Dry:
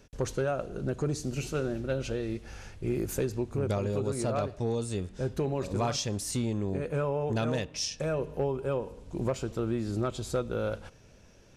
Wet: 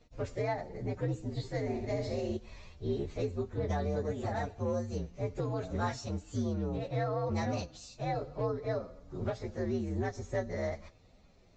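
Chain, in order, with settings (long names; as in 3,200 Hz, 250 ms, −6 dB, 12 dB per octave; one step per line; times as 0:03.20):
partials spread apart or drawn together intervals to 120%
0:01.61–0:02.37: flutter between parallel walls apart 11.1 metres, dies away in 0.68 s
level −1.5 dB
Ogg Vorbis 96 kbit/s 16,000 Hz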